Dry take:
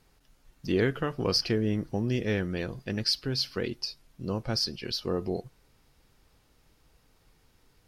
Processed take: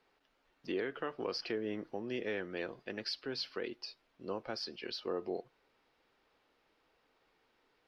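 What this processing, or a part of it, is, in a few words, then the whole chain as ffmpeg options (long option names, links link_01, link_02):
DJ mixer with the lows and highs turned down: -filter_complex "[0:a]acrossover=split=280 4100:gain=0.0794 1 0.0891[link_01][link_02][link_03];[link_01][link_02][link_03]amix=inputs=3:normalize=0,alimiter=limit=-23.5dB:level=0:latency=1:release=248,volume=-3dB"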